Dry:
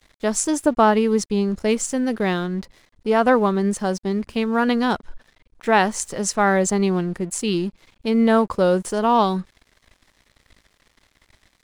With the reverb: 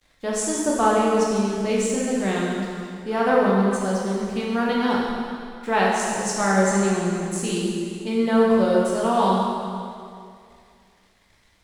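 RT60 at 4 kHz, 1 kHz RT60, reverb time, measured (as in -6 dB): 2.1 s, 2.3 s, 2.3 s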